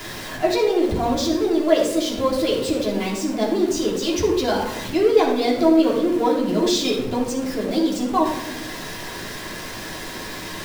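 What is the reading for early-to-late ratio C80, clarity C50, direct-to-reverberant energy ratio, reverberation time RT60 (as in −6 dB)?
7.5 dB, 4.0 dB, −4.5 dB, non-exponential decay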